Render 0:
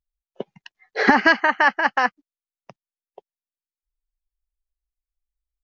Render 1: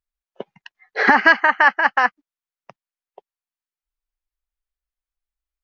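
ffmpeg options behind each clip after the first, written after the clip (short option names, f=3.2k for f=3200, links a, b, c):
-af "equalizer=f=1.4k:w=0.5:g=8.5,volume=-4.5dB"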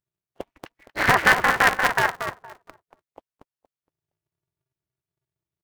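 -filter_complex "[0:a]tremolo=f=200:d=0.71,asplit=2[a][b];[b]adelay=233,lowpass=f=1.2k:p=1,volume=-5.5dB,asplit=2[c][d];[d]adelay=233,lowpass=f=1.2k:p=1,volume=0.28,asplit=2[e][f];[f]adelay=233,lowpass=f=1.2k:p=1,volume=0.28,asplit=2[g][h];[h]adelay=233,lowpass=f=1.2k:p=1,volume=0.28[i];[c][e][g][i]amix=inputs=4:normalize=0[j];[a][j]amix=inputs=2:normalize=0,aeval=exprs='val(0)*sgn(sin(2*PI*130*n/s))':c=same,volume=-1dB"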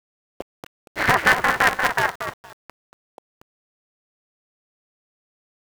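-af "aeval=exprs='val(0)*gte(abs(val(0)),0.01)':c=same"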